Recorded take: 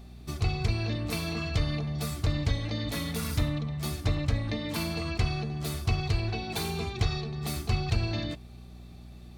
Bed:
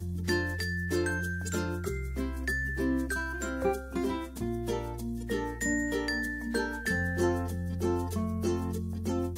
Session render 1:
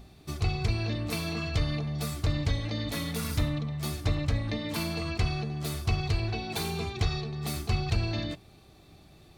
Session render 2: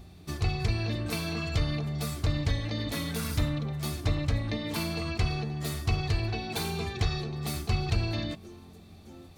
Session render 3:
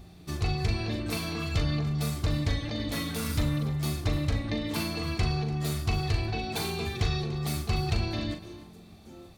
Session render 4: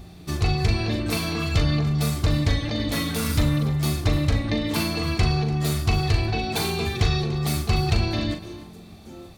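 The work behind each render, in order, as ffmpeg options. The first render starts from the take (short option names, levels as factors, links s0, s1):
-af "bandreject=f=60:t=h:w=4,bandreject=f=120:t=h:w=4,bandreject=f=180:t=h:w=4,bandreject=f=240:t=h:w=4"
-filter_complex "[1:a]volume=0.119[s0];[0:a][s0]amix=inputs=2:normalize=0"
-filter_complex "[0:a]asplit=2[s0][s1];[s1]adelay=40,volume=0.447[s2];[s0][s2]amix=inputs=2:normalize=0,aecho=1:1:292:0.158"
-af "volume=2.11"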